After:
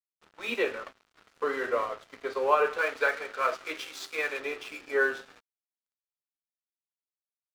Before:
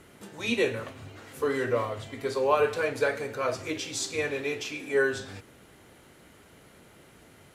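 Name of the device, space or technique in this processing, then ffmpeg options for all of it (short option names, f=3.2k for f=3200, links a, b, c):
pocket radio on a weak battery: -filter_complex "[0:a]highpass=f=140:p=1,highpass=360,lowpass=3.2k,aeval=exprs='sgn(val(0))*max(abs(val(0))-0.00501,0)':c=same,equalizer=f=1.3k:t=o:w=0.48:g=6,asettb=1/sr,asplit=3[a][b][c];[a]atrim=end=2.784[d];[b]atrim=start=2.78:end=4.39,asetpts=PTS-STARTPTS,afade=t=in:d=0.004:c=qsin,afade=t=out:st=1.606:d=0.004:c=qsin,tiltshelf=f=800:g=-4.5[e];[c]atrim=start=4.386[f];[d][e]acrossfade=d=0.004:c1=hsin:c2=qsin[g];[g][f]acrossfade=d=0.004:c1=qsin:c2=hsin"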